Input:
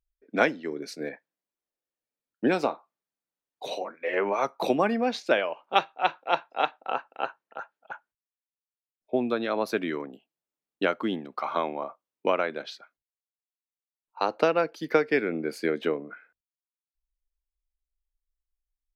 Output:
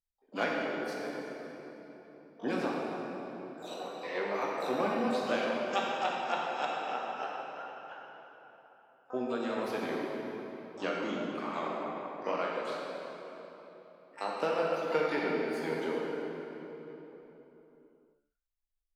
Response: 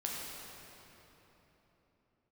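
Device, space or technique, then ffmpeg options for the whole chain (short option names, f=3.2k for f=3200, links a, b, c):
shimmer-style reverb: -filter_complex "[0:a]asplit=2[a][b];[b]asetrate=88200,aresample=44100,atempo=0.5,volume=-12dB[c];[a][c]amix=inputs=2:normalize=0[d];[1:a]atrim=start_sample=2205[e];[d][e]afir=irnorm=-1:irlink=0,asettb=1/sr,asplit=3[f][g][h];[f]atrim=end=11.834[i];[g]atrim=start=11.83:end=12.65,asetpts=PTS-STARTPTS,afade=t=in:d=0.004:c=qsin,afade=t=out:st=0.816:d=0.004:c=qsin,bass=f=250:g=0,treble=f=4k:g=-3[j];[h]atrim=start=12.646[k];[i][j]acrossfade=d=0.004:c1=hsin:c2=qsin[l];[l][k]acrossfade=d=0.004:c1=qsin:c2=hsin,volume=-9dB"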